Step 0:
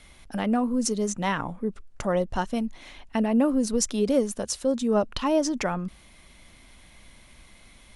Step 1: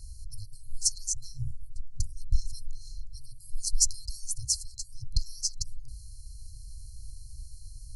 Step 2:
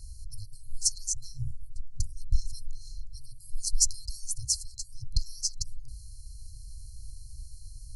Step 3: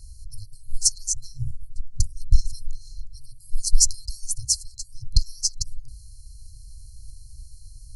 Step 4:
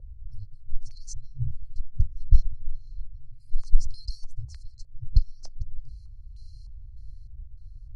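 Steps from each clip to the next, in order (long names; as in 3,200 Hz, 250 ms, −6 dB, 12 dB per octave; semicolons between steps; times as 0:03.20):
brick-wall band-stop 130–4,100 Hz; low-shelf EQ 140 Hz +9.5 dB; reversed playback; upward compression, threshold −43 dBFS; reversed playback; level +3.5 dB
no processing that can be heard
boost into a limiter +11.5 dB; expander for the loud parts 1.5 to 1, over −26 dBFS
low-pass on a step sequencer 3.3 Hz 540–3,000 Hz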